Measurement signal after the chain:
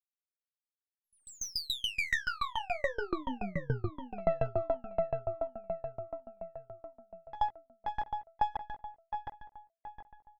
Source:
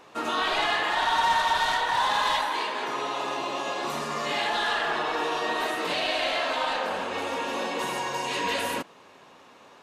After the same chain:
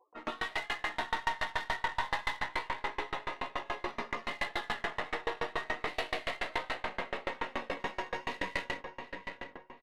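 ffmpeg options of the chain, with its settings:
-filter_complex "[0:a]lowpass=f=6.8k:w=0.5412,lowpass=f=6.8k:w=1.3066,afftfilt=real='re*gte(hypot(re,im),0.00891)':imag='im*gte(hypot(re,im),0.00891)':win_size=1024:overlap=0.75,equalizer=f=2k:w=7.8:g=14,aeval=exprs='0.355*(cos(1*acos(clip(val(0)/0.355,-1,1)))-cos(1*PI/2))+0.00708*(cos(5*acos(clip(val(0)/0.355,-1,1)))-cos(5*PI/2))+0.0316*(cos(6*acos(clip(val(0)/0.355,-1,1)))-cos(6*PI/2))+0.00355*(cos(7*acos(clip(val(0)/0.355,-1,1)))-cos(7*PI/2))':c=same,alimiter=limit=-16dB:level=0:latency=1:release=29,acontrast=88,flanger=delay=16:depth=5.3:speed=0.28,adynamicsmooth=sensitivity=2.5:basefreq=3.9k,asplit=2[a][b];[b]adelay=729,lowpass=f=2.6k:p=1,volume=-5.5dB,asplit=2[c][d];[d]adelay=729,lowpass=f=2.6k:p=1,volume=0.47,asplit=2[e][f];[f]adelay=729,lowpass=f=2.6k:p=1,volume=0.47,asplit=2[g][h];[h]adelay=729,lowpass=f=2.6k:p=1,volume=0.47,asplit=2[i][j];[j]adelay=729,lowpass=f=2.6k:p=1,volume=0.47,asplit=2[k][l];[l]adelay=729,lowpass=f=2.6k:p=1,volume=0.47[m];[a][c][e][g][i][k][m]amix=inputs=7:normalize=0,aeval=exprs='val(0)*pow(10,-30*if(lt(mod(7*n/s,1),2*abs(7)/1000),1-mod(7*n/s,1)/(2*abs(7)/1000),(mod(7*n/s,1)-2*abs(7)/1000)/(1-2*abs(7)/1000))/20)':c=same,volume=-6.5dB"

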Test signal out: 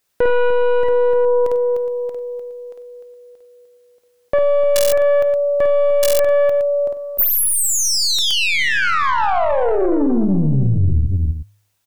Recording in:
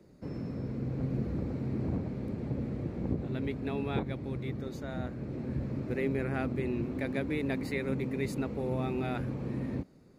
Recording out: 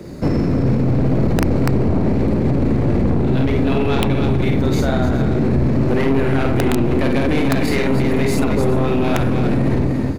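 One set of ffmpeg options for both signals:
-filter_complex "[0:a]equalizer=f=80:w=2:g=2,bandreject=f=102.9:t=h:w=4,bandreject=f=205.8:t=h:w=4,bandreject=f=308.7:t=h:w=4,bandreject=f=411.6:t=h:w=4,bandreject=f=514.5:t=h:w=4,bandreject=f=617.4:t=h:w=4,bandreject=f=720.3:t=h:w=4,bandreject=f=823.2:t=h:w=4,bandreject=f=926.1:t=h:w=4,bandreject=f=1.029k:t=h:w=4,bandreject=f=1.1319k:t=h:w=4,bandreject=f=1.2348k:t=h:w=4,bandreject=f=1.3377k:t=h:w=4,bandreject=f=1.4406k:t=h:w=4,bandreject=f=1.5435k:t=h:w=4,bandreject=f=1.6464k:t=h:w=4,bandreject=f=1.7493k:t=h:w=4,bandreject=f=1.8522k:t=h:w=4,bandreject=f=1.9551k:t=h:w=4,bandreject=f=2.058k:t=h:w=4,bandreject=f=2.1609k:t=h:w=4,bandreject=f=2.2638k:t=h:w=4,bandreject=f=2.3667k:t=h:w=4,aeval=exprs='(tanh(39.8*val(0)+0.45)-tanh(0.45))/39.8':c=same,asplit=2[a][b];[b]aecho=0:1:52|55|96|301|416:0.668|0.188|0.188|0.398|0.15[c];[a][c]amix=inputs=2:normalize=0,aeval=exprs='(mod(15*val(0)+1,2)-1)/15':c=same,alimiter=level_in=33.5dB:limit=-1dB:release=50:level=0:latency=1,volume=-7.5dB"

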